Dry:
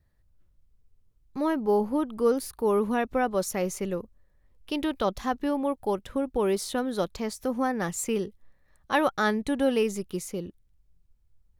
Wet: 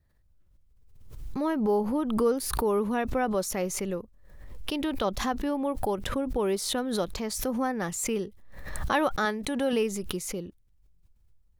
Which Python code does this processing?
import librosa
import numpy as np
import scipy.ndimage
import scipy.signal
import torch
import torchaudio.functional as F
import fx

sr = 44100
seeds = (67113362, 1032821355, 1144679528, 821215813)

y = fx.low_shelf(x, sr, hz=190.0, db=-10.5, at=(9.25, 9.73))
y = fx.pre_swell(y, sr, db_per_s=46.0)
y = F.gain(torch.from_numpy(y), -2.0).numpy()